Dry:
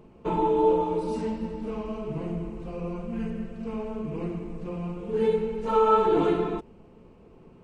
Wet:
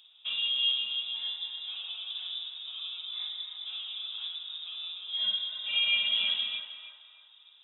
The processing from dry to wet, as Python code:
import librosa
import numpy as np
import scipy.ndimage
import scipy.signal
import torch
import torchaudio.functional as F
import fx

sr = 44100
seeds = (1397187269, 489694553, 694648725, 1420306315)

p1 = fx.freq_invert(x, sr, carrier_hz=3700)
p2 = scipy.signal.sosfilt(scipy.signal.butter(2, 170.0, 'highpass', fs=sr, output='sos'), p1)
p3 = p2 + fx.echo_banded(p2, sr, ms=310, feedback_pct=48, hz=1100.0, wet_db=-6.5, dry=0)
y = F.gain(torch.from_numpy(p3), -7.0).numpy()